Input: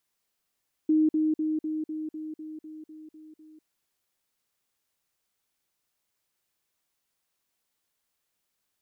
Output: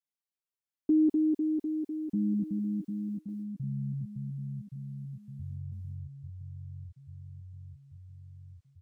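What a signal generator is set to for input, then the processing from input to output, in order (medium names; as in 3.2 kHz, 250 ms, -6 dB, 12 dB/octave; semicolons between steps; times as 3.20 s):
level ladder 311 Hz -18.5 dBFS, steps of -3 dB, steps 11, 0.20 s 0.05 s
gate with hold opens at -45 dBFS; comb 7.5 ms; ever faster or slower copies 798 ms, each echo -7 st, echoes 3, each echo -6 dB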